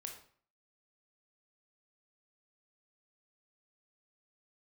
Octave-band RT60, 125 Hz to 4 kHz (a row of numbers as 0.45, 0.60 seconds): 0.55, 0.55, 0.50, 0.50, 0.45, 0.40 seconds